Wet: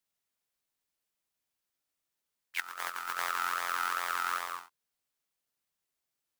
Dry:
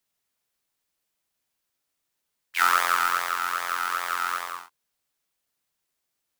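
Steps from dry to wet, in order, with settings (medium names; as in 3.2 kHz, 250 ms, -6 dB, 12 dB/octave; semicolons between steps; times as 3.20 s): 2.60–4.60 s: compressor with a negative ratio -27 dBFS, ratio -0.5; trim -6.5 dB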